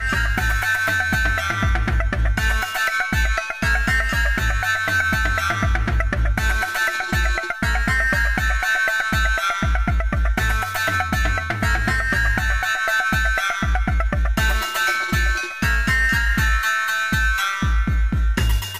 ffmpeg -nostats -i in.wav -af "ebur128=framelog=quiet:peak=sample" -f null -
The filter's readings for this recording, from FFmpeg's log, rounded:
Integrated loudness:
  I:         -19.8 LUFS
  Threshold: -29.8 LUFS
Loudness range:
  LRA:         1.0 LU
  Threshold: -39.8 LUFS
  LRA low:   -20.2 LUFS
  LRA high:  -19.2 LUFS
Sample peak:
  Peak:       -7.7 dBFS